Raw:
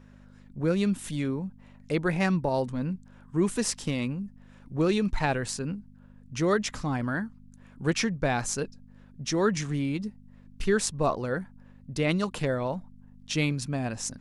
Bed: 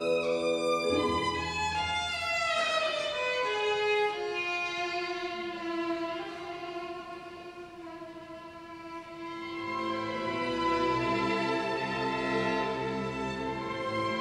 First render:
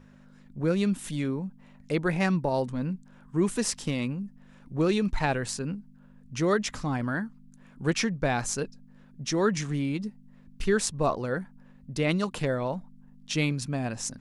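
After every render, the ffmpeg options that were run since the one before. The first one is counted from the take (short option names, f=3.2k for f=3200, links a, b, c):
-af "bandreject=f=50:t=h:w=4,bandreject=f=100:t=h:w=4"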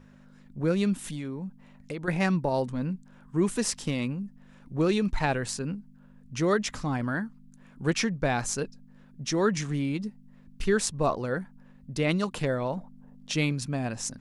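-filter_complex "[0:a]asettb=1/sr,asplit=3[a][b][c];[a]atrim=end=0.994[d];[b]atrim=start=0.99:end=2.08,asetpts=PTS-STARTPTS,afade=t=in:d=0.004:c=qsin,afade=t=out:st=1.086:d=0.004:c=qsin,acompressor=threshold=-31dB:ratio=6:attack=3.2:release=140:knee=1:detection=peak[e];[c]atrim=start=2.076[f];[d][e]acrossfade=d=0.004:c1=hsin:c2=qsin[g];[g][f]acrossfade=d=0.004:c1=qsin:c2=hsin,asettb=1/sr,asplit=3[h][i][j];[h]atrim=end=12.774[k];[i]atrim=start=12.77:end=13.32,asetpts=PTS-STARTPTS,afade=t=in:d=0.004:c=qsin,afade=t=out:st=0.546:d=0.004:c=qsin,equalizer=f=560:t=o:w=1.5:g=12.5[l];[j]atrim=start=13.316[m];[k][l]acrossfade=d=0.004:c1=hsin:c2=qsin[n];[n][m]acrossfade=d=0.004:c1=qsin:c2=hsin"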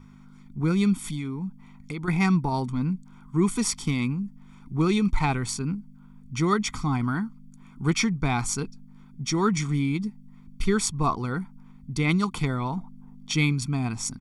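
-af "aecho=1:1:0.9:0.96"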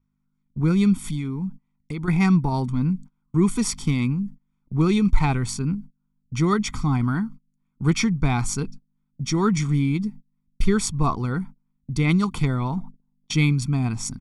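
-af "agate=range=-29dB:threshold=-39dB:ratio=16:detection=peak,lowshelf=f=200:g=7.5"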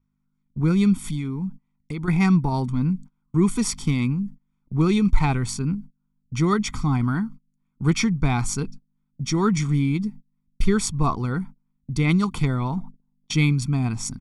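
-af anull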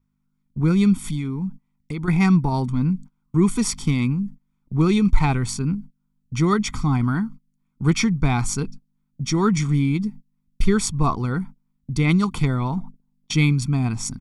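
-af "volume=1.5dB"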